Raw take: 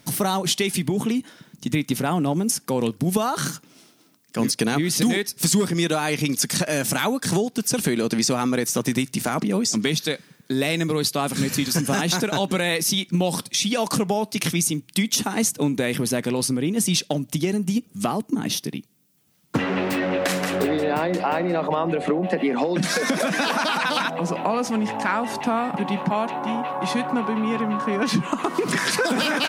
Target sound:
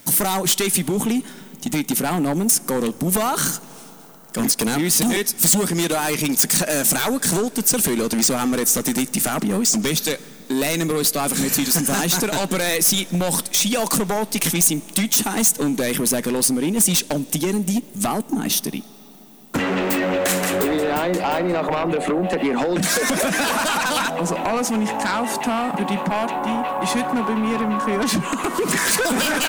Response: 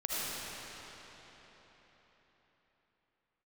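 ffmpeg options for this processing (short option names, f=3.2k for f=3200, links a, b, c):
-filter_complex "[0:a]equalizer=f=120:w=2.8:g=-10.5,aeval=exprs='0.376*sin(PI/2*2.51*val(0)/0.376)':c=same,aexciter=amount=2.7:drive=4.4:freq=6.9k,asplit=2[a][b];[1:a]atrim=start_sample=2205,asetrate=31311,aresample=44100[c];[b][c]afir=irnorm=-1:irlink=0,volume=-29.5dB[d];[a][d]amix=inputs=2:normalize=0,volume=-7.5dB"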